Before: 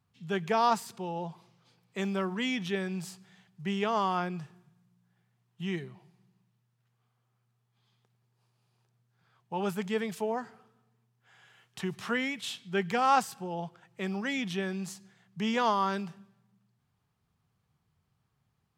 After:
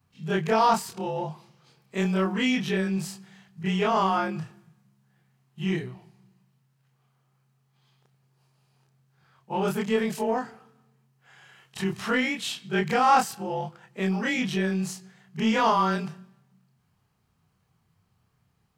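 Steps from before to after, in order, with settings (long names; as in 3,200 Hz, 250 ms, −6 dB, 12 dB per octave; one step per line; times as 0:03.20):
every overlapping window played backwards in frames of 63 ms
notch filter 3,500 Hz, Q 19
in parallel at −7 dB: soft clipping −31 dBFS, distortion −9 dB
on the sum: level +6.5 dB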